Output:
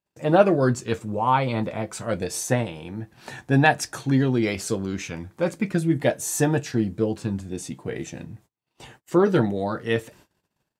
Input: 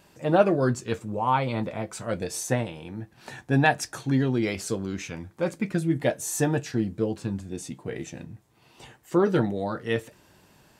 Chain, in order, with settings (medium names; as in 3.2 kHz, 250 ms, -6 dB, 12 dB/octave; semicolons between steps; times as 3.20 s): gate -53 dBFS, range -36 dB; trim +3 dB